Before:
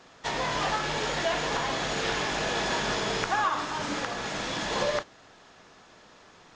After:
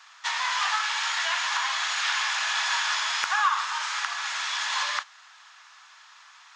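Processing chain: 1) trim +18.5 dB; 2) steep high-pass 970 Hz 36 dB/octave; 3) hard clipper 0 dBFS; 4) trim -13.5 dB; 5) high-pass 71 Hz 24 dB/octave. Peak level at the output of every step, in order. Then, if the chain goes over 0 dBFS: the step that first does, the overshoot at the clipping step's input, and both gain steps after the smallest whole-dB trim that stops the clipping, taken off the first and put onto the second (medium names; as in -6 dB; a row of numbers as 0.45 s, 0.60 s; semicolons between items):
+8.0 dBFS, +5.0 dBFS, 0.0 dBFS, -13.5 dBFS, -12.5 dBFS; step 1, 5.0 dB; step 1 +13.5 dB, step 4 -8.5 dB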